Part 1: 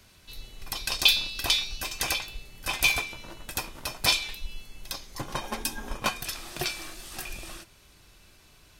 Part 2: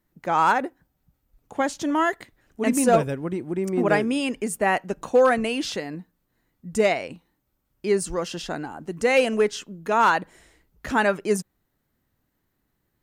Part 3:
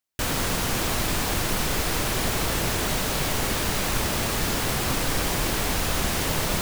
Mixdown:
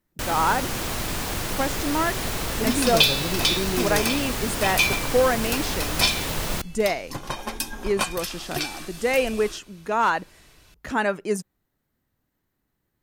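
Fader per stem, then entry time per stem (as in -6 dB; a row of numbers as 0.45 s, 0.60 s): +2.0 dB, -2.5 dB, -3.0 dB; 1.95 s, 0.00 s, 0.00 s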